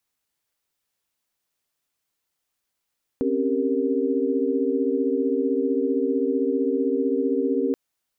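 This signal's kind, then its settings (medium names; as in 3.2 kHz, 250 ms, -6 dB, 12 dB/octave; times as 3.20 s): chord C4/C#4/G4/A#4 sine, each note -25.5 dBFS 4.53 s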